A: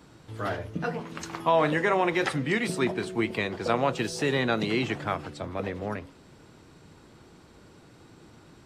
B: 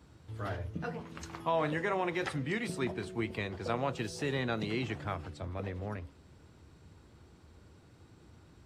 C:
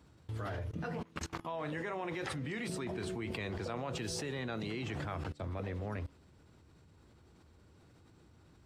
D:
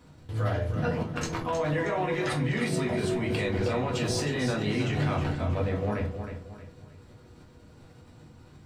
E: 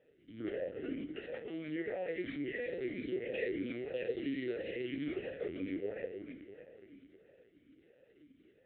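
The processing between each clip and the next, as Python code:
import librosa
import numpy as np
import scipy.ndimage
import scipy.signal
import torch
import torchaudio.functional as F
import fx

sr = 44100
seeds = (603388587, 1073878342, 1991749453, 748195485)

y1 = fx.peak_eq(x, sr, hz=74.0, db=14.0, octaves=1.0)
y1 = y1 * 10.0 ** (-8.5 / 20.0)
y2 = fx.level_steps(y1, sr, step_db=23)
y2 = y2 * 10.0 ** (7.5 / 20.0)
y3 = fx.echo_feedback(y2, sr, ms=315, feedback_pct=36, wet_db=-8.5)
y3 = fx.room_shoebox(y3, sr, seeds[0], volume_m3=150.0, walls='furnished', distance_m=1.9)
y3 = y3 * 10.0 ** (4.5 / 20.0)
y4 = fx.echo_feedback(y3, sr, ms=431, feedback_pct=53, wet_db=-15)
y4 = fx.lpc_vocoder(y4, sr, seeds[1], excitation='pitch_kept', order=8)
y4 = fx.vowel_sweep(y4, sr, vowels='e-i', hz=1.5)
y4 = y4 * 10.0 ** (1.5 / 20.0)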